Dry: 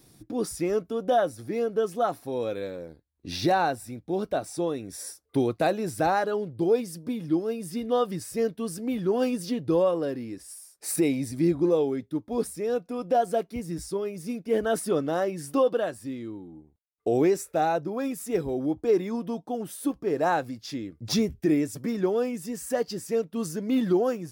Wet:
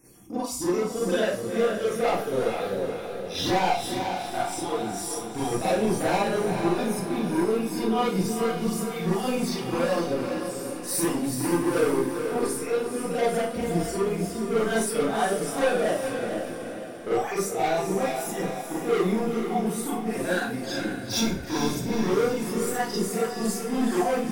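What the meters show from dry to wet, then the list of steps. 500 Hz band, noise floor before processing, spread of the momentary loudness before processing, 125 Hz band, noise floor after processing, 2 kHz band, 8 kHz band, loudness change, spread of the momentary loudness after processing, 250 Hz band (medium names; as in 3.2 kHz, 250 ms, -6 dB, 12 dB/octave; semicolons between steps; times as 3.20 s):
+0.5 dB, -65 dBFS, 11 LU, +2.5 dB, -35 dBFS, +5.5 dB, +5.5 dB, +1.0 dB, 6 LU, +1.0 dB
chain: random holes in the spectrogram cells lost 37%; hum notches 50/100/150/200/250 Hz; overload inside the chain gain 28 dB; on a send: echo that smears into a reverb 460 ms, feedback 49%, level -6 dB; on the sum: Schroeder reverb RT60 0.38 s, combs from 32 ms, DRR -8.5 dB; trim -2 dB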